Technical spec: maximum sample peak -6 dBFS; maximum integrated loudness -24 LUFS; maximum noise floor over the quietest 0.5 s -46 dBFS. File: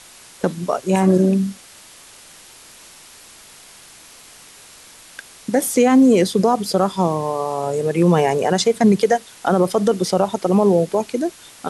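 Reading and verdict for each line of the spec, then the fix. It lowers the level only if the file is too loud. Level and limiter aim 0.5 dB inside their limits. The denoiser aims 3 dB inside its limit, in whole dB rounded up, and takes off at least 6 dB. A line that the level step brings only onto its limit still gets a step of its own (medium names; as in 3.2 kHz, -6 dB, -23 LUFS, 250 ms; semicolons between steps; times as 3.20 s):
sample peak -5.5 dBFS: fail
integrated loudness -18.0 LUFS: fail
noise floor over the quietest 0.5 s -44 dBFS: fail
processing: trim -6.5 dB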